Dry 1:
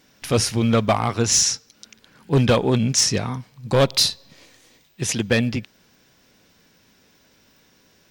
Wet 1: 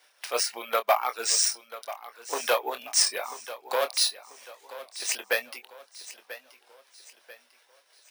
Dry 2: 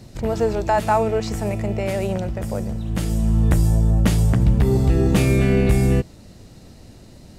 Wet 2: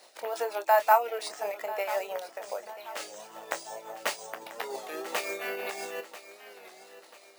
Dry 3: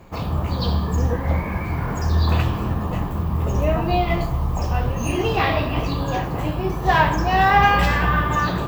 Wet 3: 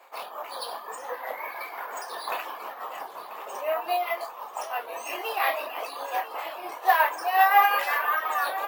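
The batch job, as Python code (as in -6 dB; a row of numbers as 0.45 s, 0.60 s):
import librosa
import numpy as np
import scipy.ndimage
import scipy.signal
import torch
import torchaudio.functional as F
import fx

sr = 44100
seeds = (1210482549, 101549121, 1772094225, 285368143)

p1 = scipy.signal.sosfilt(scipy.signal.butter(2, 7500.0, 'lowpass', fs=sr, output='sos'), x)
p2 = fx.dereverb_blind(p1, sr, rt60_s=0.54)
p3 = scipy.signal.sosfilt(scipy.signal.butter(4, 580.0, 'highpass', fs=sr, output='sos'), p2)
p4 = fx.dynamic_eq(p3, sr, hz=3400.0, q=3.9, threshold_db=-45.0, ratio=4.0, max_db=-5)
p5 = fx.tremolo_shape(p4, sr, shape='triangle', hz=5.7, depth_pct=55)
p6 = fx.doubler(p5, sr, ms=25.0, db=-10.0)
p7 = p6 + fx.echo_feedback(p6, sr, ms=989, feedback_pct=41, wet_db=-15, dry=0)
p8 = np.repeat(p7[::3], 3)[:len(p7)]
y = fx.record_warp(p8, sr, rpm=33.33, depth_cents=100.0)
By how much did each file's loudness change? 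-6.5 LU, -11.5 LU, -6.5 LU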